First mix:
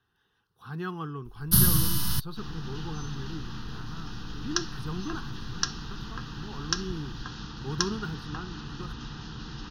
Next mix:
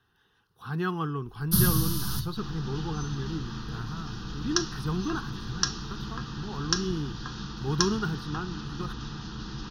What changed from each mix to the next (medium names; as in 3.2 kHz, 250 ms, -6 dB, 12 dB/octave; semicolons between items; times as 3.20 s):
speech +5.0 dB; first sound -6.0 dB; reverb: on, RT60 0.60 s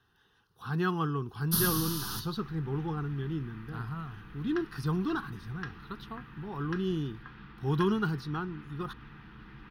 first sound: add tone controls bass -14 dB, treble -3 dB; second sound: add four-pole ladder low-pass 2.3 kHz, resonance 80%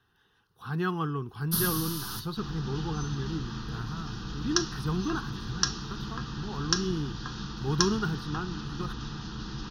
second sound: remove four-pole ladder low-pass 2.3 kHz, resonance 80%